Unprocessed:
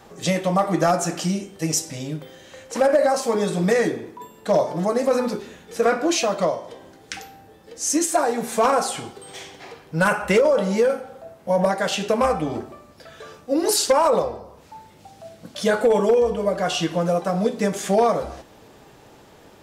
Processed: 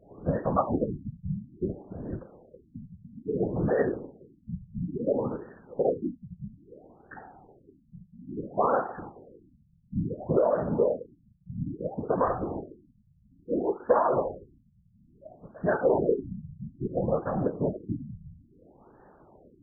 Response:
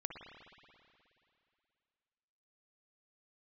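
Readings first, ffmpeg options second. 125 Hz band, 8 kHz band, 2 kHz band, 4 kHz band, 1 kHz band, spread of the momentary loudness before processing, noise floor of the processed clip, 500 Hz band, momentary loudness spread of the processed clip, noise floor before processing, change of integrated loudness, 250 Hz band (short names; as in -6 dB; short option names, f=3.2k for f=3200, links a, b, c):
-5.0 dB, under -40 dB, -15.0 dB, under -40 dB, -9.0 dB, 18 LU, -63 dBFS, -8.5 dB, 21 LU, -50 dBFS, -8.5 dB, -7.5 dB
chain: -af "afftfilt=real='hypot(re,im)*cos(2*PI*random(0))':imag='hypot(re,im)*sin(2*PI*random(1))':win_size=512:overlap=0.75,afftfilt=real='re*lt(b*sr/1024,200*pow(1900/200,0.5+0.5*sin(2*PI*0.59*pts/sr)))':imag='im*lt(b*sr/1024,200*pow(1900/200,0.5+0.5*sin(2*PI*0.59*pts/sr)))':win_size=1024:overlap=0.75"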